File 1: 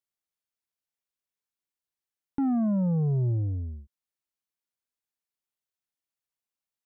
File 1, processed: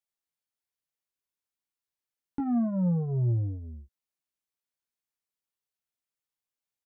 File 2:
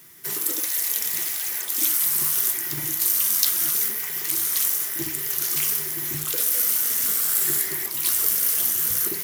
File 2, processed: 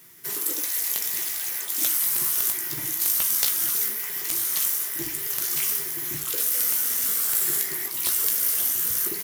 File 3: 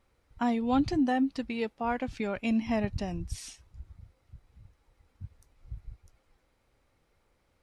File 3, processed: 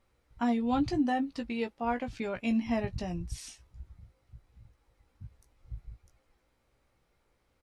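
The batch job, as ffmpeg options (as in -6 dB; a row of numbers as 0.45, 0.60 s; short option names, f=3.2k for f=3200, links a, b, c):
-filter_complex "[0:a]aeval=exprs='(mod(2*val(0)+1,2)-1)/2':c=same,asplit=2[a][b];[b]adelay=17,volume=-7dB[c];[a][c]amix=inputs=2:normalize=0,volume=-2.5dB"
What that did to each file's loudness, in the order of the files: -1.5, -1.5, -1.5 LU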